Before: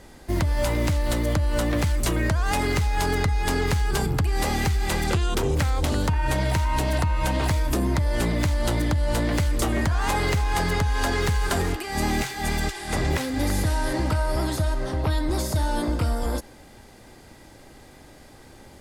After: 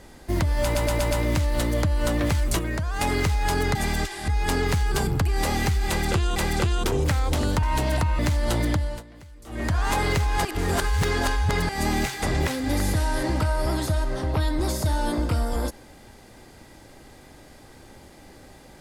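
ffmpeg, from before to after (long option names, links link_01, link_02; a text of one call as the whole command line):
ffmpeg -i in.wav -filter_complex "[0:a]asplit=17[link_01][link_02][link_03][link_04][link_05][link_06][link_07][link_08][link_09][link_10][link_11][link_12][link_13][link_14][link_15][link_16][link_17];[link_01]atrim=end=0.752[link_18];[link_02]atrim=start=0.628:end=0.752[link_19];[link_03]atrim=start=0.628:end=0.752[link_20];[link_04]atrim=start=0.628:end=0.752[link_21];[link_05]atrim=start=0.628:end=2.112[link_22];[link_06]atrim=start=2.108:end=2.532,asetpts=PTS-STARTPTS,volume=-4.5dB[link_23];[link_07]atrim=start=2.528:end=3.272[link_24];[link_08]atrim=start=12.388:end=12.922[link_25];[link_09]atrim=start=3.268:end=5.352[link_26];[link_10]atrim=start=4.868:end=6.142[link_27];[link_11]atrim=start=6.638:end=7.202[link_28];[link_12]atrim=start=8.358:end=9.2,asetpts=PTS-STARTPTS,afade=type=out:start_time=0.552:duration=0.29:silence=0.0707946[link_29];[link_13]atrim=start=9.2:end=9.63,asetpts=PTS-STARTPTS,volume=-23dB[link_30];[link_14]atrim=start=9.63:end=10.622,asetpts=PTS-STARTPTS,afade=type=in:duration=0.29:silence=0.0707946[link_31];[link_15]atrim=start=10.618:end=11.862,asetpts=PTS-STARTPTS,areverse[link_32];[link_16]atrim=start=11.858:end=12.392[link_33];[link_17]atrim=start=12.918[link_34];[link_18][link_19]acrossfade=duration=0.004:curve1=hsin:curve2=hsin[link_35];[link_35][link_20]acrossfade=duration=0.004:curve1=hsin:curve2=hsin[link_36];[link_36][link_21]acrossfade=duration=0.004:curve1=hsin:curve2=hsin[link_37];[link_37][link_22]acrossfade=duration=0.004:curve1=hsin:curve2=hsin[link_38];[link_38][link_23]acrossfade=duration=0.004:curve1=hsin:curve2=hsin[link_39];[link_39][link_24]acrossfade=duration=0.004:curve1=hsin:curve2=hsin[link_40];[link_40][link_25]acrossfade=duration=0.004:curve1=hsin:curve2=hsin[link_41];[link_41][link_26]acrossfade=duration=0.004:curve1=hsin:curve2=hsin[link_42];[link_42][link_27]acrossfade=duration=0.004:curve1=hsin:curve2=hsin[link_43];[link_43][link_28]acrossfade=duration=0.004:curve1=hsin:curve2=hsin[link_44];[link_29][link_30][link_31]concat=n=3:v=0:a=1[link_45];[link_44][link_45]acrossfade=duration=0.004:curve1=hsin:curve2=hsin[link_46];[link_46][link_32]acrossfade=duration=0.004:curve1=hsin:curve2=hsin[link_47];[link_47][link_33]acrossfade=duration=0.004:curve1=hsin:curve2=hsin[link_48];[link_48][link_34]acrossfade=duration=0.004:curve1=hsin:curve2=hsin" out.wav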